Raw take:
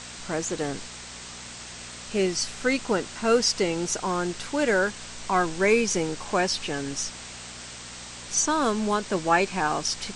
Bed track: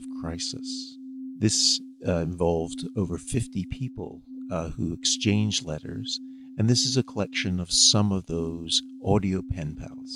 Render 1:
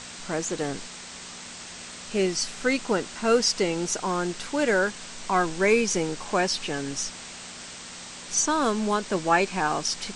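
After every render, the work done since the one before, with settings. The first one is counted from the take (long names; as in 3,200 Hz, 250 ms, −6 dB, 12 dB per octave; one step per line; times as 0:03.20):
hum removal 60 Hz, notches 2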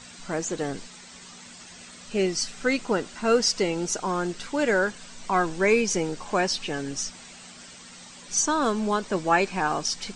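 broadband denoise 9 dB, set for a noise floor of −41 dBFS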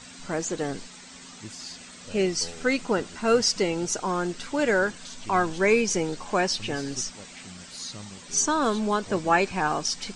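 mix in bed track −19.5 dB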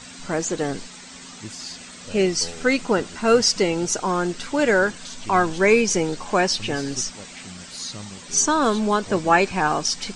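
level +4.5 dB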